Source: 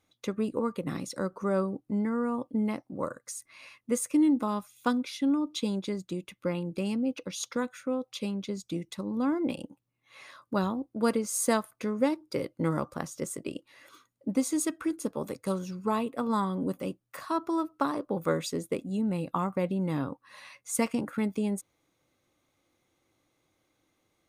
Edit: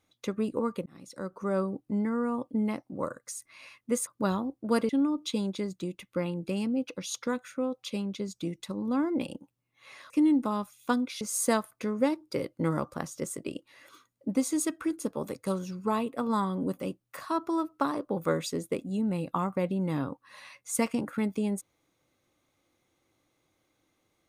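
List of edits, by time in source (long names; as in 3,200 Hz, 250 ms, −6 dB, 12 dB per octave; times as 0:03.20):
0:00.86–0:01.87: fade in equal-power
0:04.07–0:05.18: swap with 0:10.39–0:11.21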